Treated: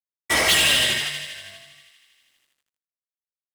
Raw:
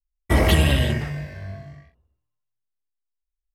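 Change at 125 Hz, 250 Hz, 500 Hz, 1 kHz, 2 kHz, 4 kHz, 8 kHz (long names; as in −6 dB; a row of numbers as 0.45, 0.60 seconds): −18.5, −11.0, −4.5, +0.5, +6.5, +10.0, +12.5 decibels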